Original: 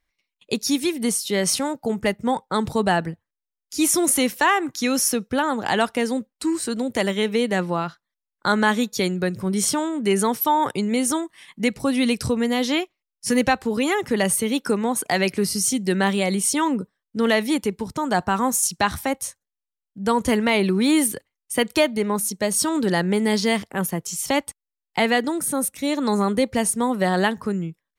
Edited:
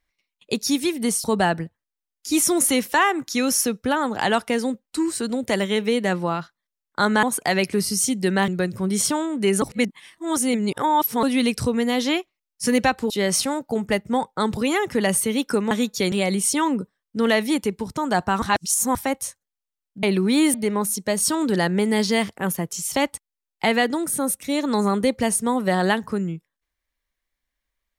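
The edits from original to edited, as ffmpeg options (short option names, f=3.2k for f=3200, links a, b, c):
-filter_complex "[0:a]asplit=14[a][b][c][d][e][f][g][h][i][j][k][l][m][n];[a]atrim=end=1.242[o];[b]atrim=start=2.708:end=8.702[p];[c]atrim=start=14.868:end=16.122[q];[d]atrim=start=9.108:end=10.252[r];[e]atrim=start=10.248:end=11.862,asetpts=PTS-STARTPTS,areverse[s];[f]atrim=start=11.858:end=13.732[t];[g]atrim=start=1.238:end=2.712[u];[h]atrim=start=13.728:end=14.872[v];[i]atrim=start=8.698:end=9.112[w];[j]atrim=start=16.118:end=18.422[x];[k]atrim=start=18.418:end=18.952,asetpts=PTS-STARTPTS,areverse[y];[l]atrim=start=18.948:end=20.032[z];[m]atrim=start=20.548:end=21.062[aa];[n]atrim=start=21.878[ab];[o][p]acrossfade=d=0.004:c1=hsin:c2=hsin[ac];[ac][q]acrossfade=d=0.004:c1=hsin:c2=hsin[ad];[ad][r]acrossfade=d=0.004:c1=hsin:c2=hsin[ae];[ae][s]acrossfade=d=0.004:c1=hsin:c2=hsin[af];[af][t]acrossfade=d=0.004:c1=hsin:c2=hsin[ag];[ag][u]acrossfade=d=0.004:c1=hsin:c2=hsin[ah];[ah][v]acrossfade=d=0.004:c1=hsin:c2=hsin[ai];[ai][w]acrossfade=d=0.004:c1=hsin:c2=hsin[aj];[aj][x]acrossfade=d=0.004:c1=hsin:c2=hsin[ak];[ak][y]acrossfade=d=0.004:c1=hsin:c2=hsin[al];[al][z]acrossfade=d=0.004:c1=hsin:c2=hsin[am];[am][aa]acrossfade=d=0.004:c1=hsin:c2=hsin[an];[an][ab]acrossfade=d=0.004:c1=hsin:c2=hsin"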